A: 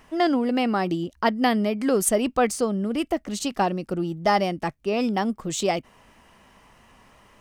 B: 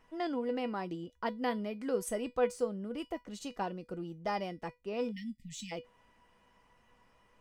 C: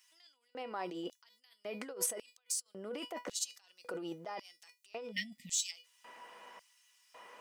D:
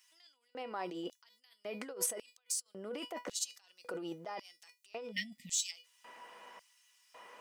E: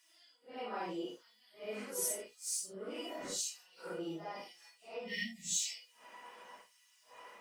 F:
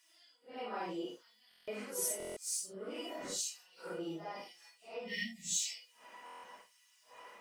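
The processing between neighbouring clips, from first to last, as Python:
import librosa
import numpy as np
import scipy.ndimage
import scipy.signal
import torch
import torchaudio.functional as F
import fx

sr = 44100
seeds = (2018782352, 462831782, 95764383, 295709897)

y1 = fx.high_shelf(x, sr, hz=4500.0, db=-7.0)
y1 = fx.comb_fb(y1, sr, f0_hz=490.0, decay_s=0.19, harmonics='all', damping=0.0, mix_pct=80)
y1 = fx.spec_erase(y1, sr, start_s=5.11, length_s=0.61, low_hz=260.0, high_hz=1800.0)
y1 = y1 * librosa.db_to_amplitude(-1.5)
y2 = fx.over_compress(y1, sr, threshold_db=-44.0, ratio=-1.0)
y2 = fx.filter_lfo_highpass(y2, sr, shape='square', hz=0.91, low_hz=500.0, high_hz=5100.0, q=0.88)
y2 = y2 * librosa.db_to_amplitude(7.5)
y3 = y2
y4 = fx.phase_scramble(y3, sr, seeds[0], window_ms=200)
y5 = fx.buffer_glitch(y4, sr, at_s=(1.49, 2.18, 6.25), block=1024, repeats=7)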